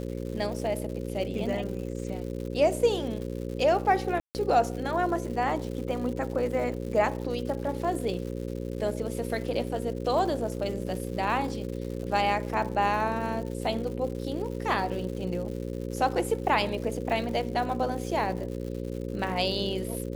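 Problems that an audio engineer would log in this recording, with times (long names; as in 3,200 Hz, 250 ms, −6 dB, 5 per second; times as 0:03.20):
mains buzz 60 Hz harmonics 9 −34 dBFS
surface crackle 200 per second −37 dBFS
0:04.20–0:04.35: drop-out 149 ms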